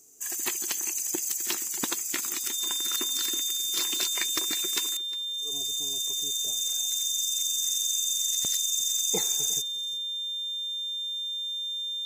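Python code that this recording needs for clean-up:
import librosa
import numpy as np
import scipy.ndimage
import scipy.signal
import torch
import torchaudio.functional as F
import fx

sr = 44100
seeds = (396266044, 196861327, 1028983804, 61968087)

y = fx.notch(x, sr, hz=3600.0, q=30.0)
y = fx.fix_echo_inverse(y, sr, delay_ms=356, level_db=-19.5)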